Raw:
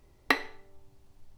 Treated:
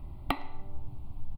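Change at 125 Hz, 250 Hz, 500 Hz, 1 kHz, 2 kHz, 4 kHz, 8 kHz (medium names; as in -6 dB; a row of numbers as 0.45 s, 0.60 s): +16.0 dB, -1.0 dB, -6.0 dB, -2.5 dB, -13.5 dB, -8.0 dB, -10.0 dB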